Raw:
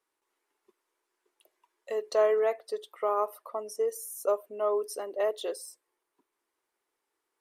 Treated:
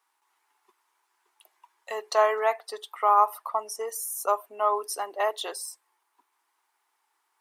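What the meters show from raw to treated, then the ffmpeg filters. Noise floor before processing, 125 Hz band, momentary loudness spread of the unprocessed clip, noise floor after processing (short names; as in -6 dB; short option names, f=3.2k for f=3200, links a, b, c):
-84 dBFS, n/a, 12 LU, -76 dBFS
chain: -af "highpass=310,lowshelf=f=670:t=q:w=3:g=-7,volume=7.5dB"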